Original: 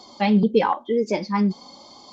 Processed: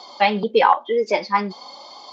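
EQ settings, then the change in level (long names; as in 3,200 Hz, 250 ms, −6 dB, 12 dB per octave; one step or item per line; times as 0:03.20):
three-way crossover with the lows and the highs turned down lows −19 dB, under 480 Hz, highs −17 dB, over 5,200 Hz
+8.0 dB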